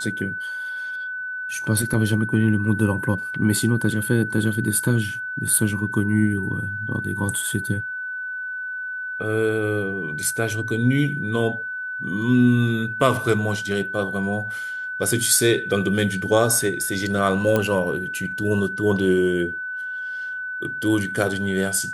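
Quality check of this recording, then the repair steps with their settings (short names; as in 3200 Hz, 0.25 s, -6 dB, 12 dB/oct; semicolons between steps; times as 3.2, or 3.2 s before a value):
tone 1500 Hz -27 dBFS
17.56 pop -8 dBFS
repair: de-click; notch 1500 Hz, Q 30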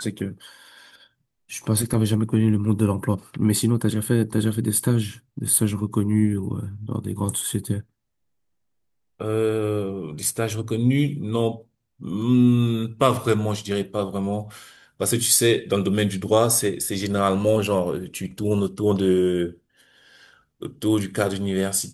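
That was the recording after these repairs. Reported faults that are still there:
none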